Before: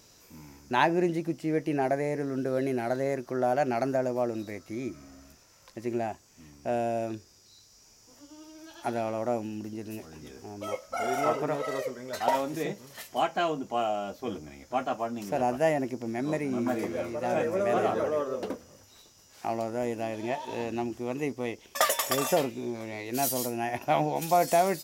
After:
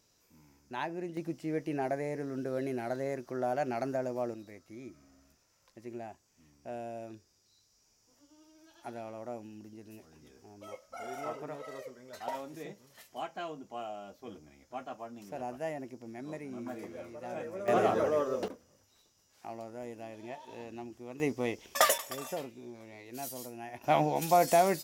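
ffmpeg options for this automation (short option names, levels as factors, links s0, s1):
-af "asetnsamples=n=441:p=0,asendcmd='1.17 volume volume -6dB;4.34 volume volume -12dB;17.68 volume volume -0.5dB;18.48 volume volume -12dB;21.2 volume volume 0dB;21.98 volume volume -12.5dB;23.84 volume volume -1dB',volume=0.224"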